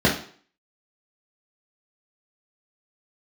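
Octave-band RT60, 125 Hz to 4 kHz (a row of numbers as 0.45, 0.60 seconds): 0.40, 0.45, 0.50, 0.50, 0.45, 0.45 seconds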